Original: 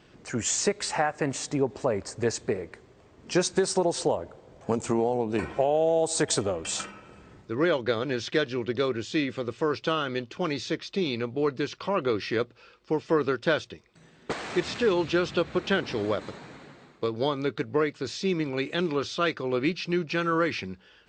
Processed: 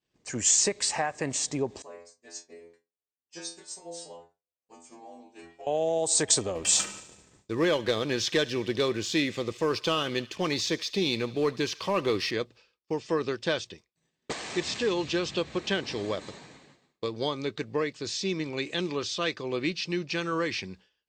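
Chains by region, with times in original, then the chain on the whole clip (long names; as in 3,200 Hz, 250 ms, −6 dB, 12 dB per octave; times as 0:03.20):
0:01.82–0:05.67: parametric band 100 Hz −11 dB 2.3 octaves + stiff-string resonator 82 Hz, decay 0.82 s, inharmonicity 0.002
0:06.55–0:12.31: leveller curve on the samples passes 1 + feedback echo with a high-pass in the loop 73 ms, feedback 73%, high-pass 860 Hz, level −19 dB
whole clip: downward expander −42 dBFS; parametric band 7,800 Hz +10 dB 2.3 octaves; notch filter 1,400 Hz, Q 6.9; level −4 dB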